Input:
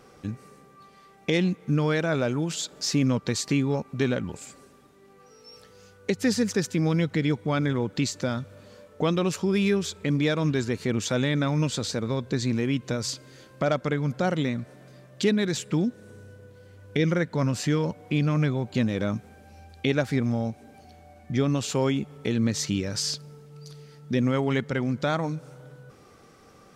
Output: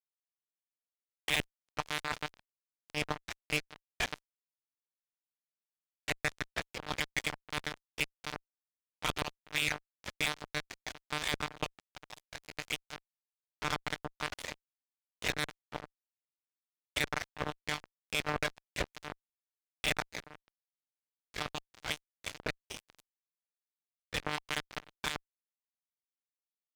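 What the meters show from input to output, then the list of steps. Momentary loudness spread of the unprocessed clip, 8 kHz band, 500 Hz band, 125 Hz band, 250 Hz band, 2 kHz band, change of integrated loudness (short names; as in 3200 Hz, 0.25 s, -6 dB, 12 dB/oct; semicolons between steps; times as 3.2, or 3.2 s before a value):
10 LU, -10.0 dB, -17.0 dB, -21.0 dB, -22.5 dB, -2.5 dB, -10.5 dB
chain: spectral gate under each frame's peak -15 dB weak; reverb removal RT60 1.3 s; monotone LPC vocoder at 8 kHz 150 Hz; fuzz box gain 27 dB, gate -34 dBFS; gain -5 dB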